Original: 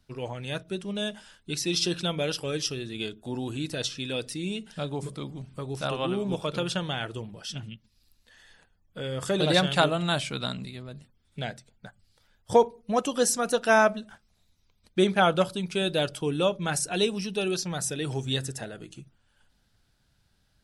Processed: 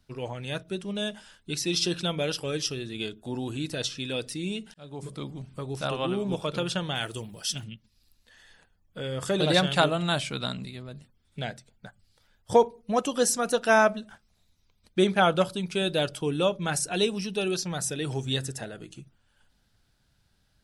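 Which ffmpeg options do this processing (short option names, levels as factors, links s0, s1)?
-filter_complex "[0:a]asettb=1/sr,asplit=3[s0][s1][s2];[s0]atrim=end=6.954[s3];[s1]atrim=start=6.95:end=7.64,asetpts=PTS-STARTPTS,afade=t=in:d=0.004:c=qsin,afade=t=out:st=0.686:d=0.004:c=qsin,aemphasis=mode=production:type=75fm[s4];[s2]atrim=start=7.636[s5];[s3][s4]acrossfade=d=0.004:c1=hsin:c2=qsin[s6];[s6][s5]acrossfade=d=0.004:c1=qsin:c2=hsin,asplit=2[s7][s8];[s7]atrim=end=4.74,asetpts=PTS-STARTPTS,afade=t=out:st=4.736:d=0.004:c=hsin[s9];[s8]atrim=start=4.74,asetpts=PTS-STARTPTS,afade=t=in:d=0.46[s10];[s9][s10]concat=n=2:v=0:a=1"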